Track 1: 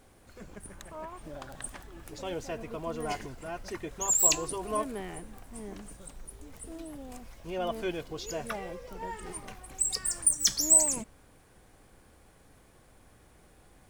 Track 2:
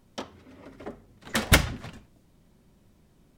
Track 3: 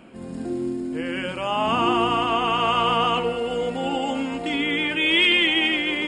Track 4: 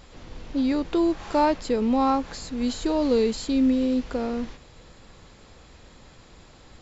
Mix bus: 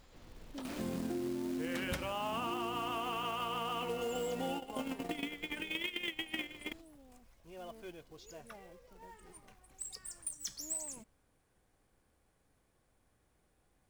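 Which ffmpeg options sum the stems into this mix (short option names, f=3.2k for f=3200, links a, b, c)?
-filter_complex "[0:a]volume=-15.5dB[a];[1:a]adelay=400,volume=-13dB[b];[2:a]acrusher=bits=7:mix=0:aa=0.000001,adelay=650,volume=2dB[c];[3:a]acompressor=threshold=-36dB:ratio=2.5,volume=-12.5dB,asplit=2[d][e];[e]apad=whole_len=296693[f];[c][f]sidechaingate=range=-33dB:threshold=-58dB:ratio=16:detection=peak[g];[a][g][d]amix=inputs=3:normalize=0,acrusher=bits=4:mode=log:mix=0:aa=0.000001,acompressor=threshold=-32dB:ratio=3,volume=0dB[h];[b][h]amix=inputs=2:normalize=0,acompressor=threshold=-34dB:ratio=6"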